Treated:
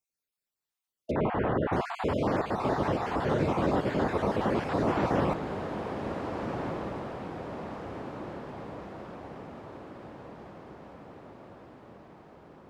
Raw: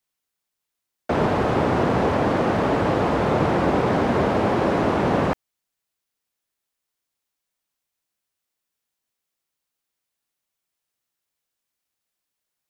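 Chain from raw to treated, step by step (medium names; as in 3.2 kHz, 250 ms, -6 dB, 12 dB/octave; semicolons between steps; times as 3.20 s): random holes in the spectrogram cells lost 35%; 1.11–1.73 s: low-pass 2.7 kHz 24 dB/octave; echo that smears into a reverb 1531 ms, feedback 59%, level -7 dB; trim -6.5 dB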